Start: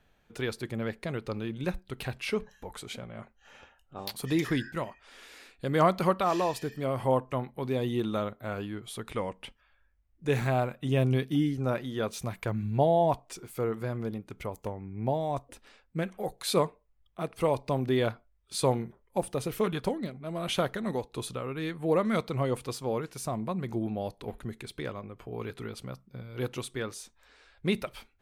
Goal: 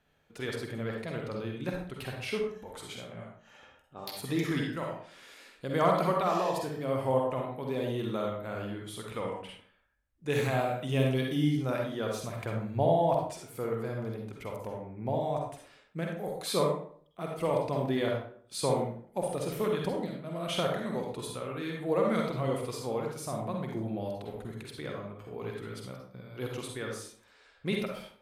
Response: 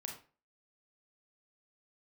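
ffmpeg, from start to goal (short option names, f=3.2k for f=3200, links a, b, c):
-filter_complex "[0:a]lowshelf=f=60:g=-10.5[a];[1:a]atrim=start_sample=2205,asetrate=29547,aresample=44100[b];[a][b]afir=irnorm=-1:irlink=0,asettb=1/sr,asplit=3[c][d][e];[c]atrim=end=9.424[f];[d]atrim=start=9.42:end=11.84,asetpts=PTS-STARTPTS,afade=t=in:d=0.004:c=qsin,afade=t=out:st=2.416:d=0.004:c=qsin,adynamicequalizer=threshold=0.00562:dfrequency=2000:dqfactor=0.7:tfrequency=2000:tqfactor=0.7:attack=5:release=100:ratio=0.375:range=2.5:mode=boostabove:tftype=highshelf[g];[e]atrim=start=11.836[h];[f][g]acrossfade=d=0.004:c1=hsin:c2=qsin[i];[i][h]acrossfade=d=0.004:c1=qsin:c2=hsin,volume=-1.5dB"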